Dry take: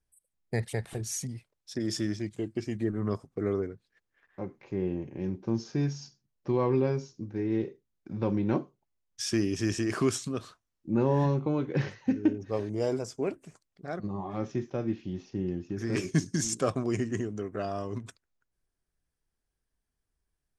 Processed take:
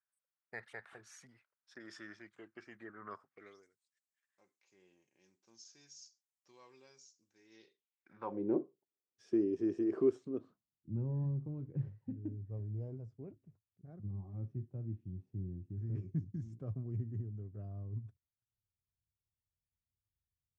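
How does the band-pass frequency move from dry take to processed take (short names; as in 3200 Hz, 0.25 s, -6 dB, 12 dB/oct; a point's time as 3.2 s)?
band-pass, Q 3
3.26 s 1400 Hz
3.66 s 7900 Hz
7.4 s 7900 Hz
8.18 s 1500 Hz
8.43 s 380 Hz
10.29 s 380 Hz
10.91 s 100 Hz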